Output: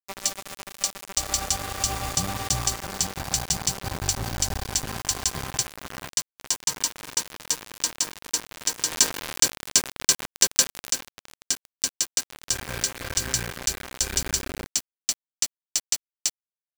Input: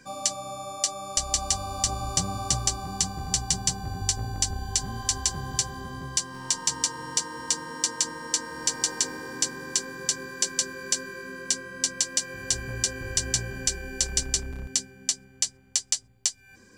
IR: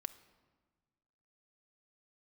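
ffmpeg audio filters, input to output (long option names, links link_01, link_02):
-filter_complex "[0:a]acrusher=bits=4:mix=0:aa=0.000001,asettb=1/sr,asplit=3[link_01][link_02][link_03];[link_01]atrim=end=8.914[link_04];[link_02]atrim=start=8.91:end=10.89,asetpts=PTS-STARTPTS,afade=type=in:duration=0.004:curve=qsin,afade=type=out:start_time=1.976:duration=0.004:curve=qsin,acontrast=86[link_05];[link_03]atrim=start=10.886[link_06];[link_04][link_05]acrossfade=duration=0.004:curve1=hsin:curve2=qsin[link_07];[link_07][link_06]acrossfade=duration=0.004:curve1=qsin:curve2=hsin"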